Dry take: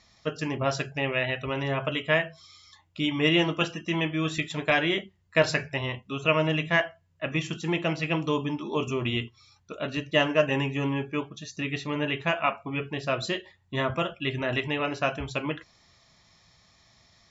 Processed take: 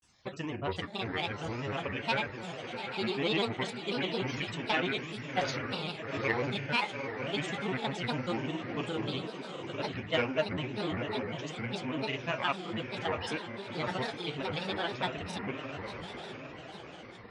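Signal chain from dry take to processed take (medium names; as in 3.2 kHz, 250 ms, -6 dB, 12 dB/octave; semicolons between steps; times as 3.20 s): echo that smears into a reverb 807 ms, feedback 51%, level -6.5 dB; granulator 100 ms, grains 20 per s, spray 30 ms, pitch spread up and down by 7 st; transformer saturation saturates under 940 Hz; trim -5 dB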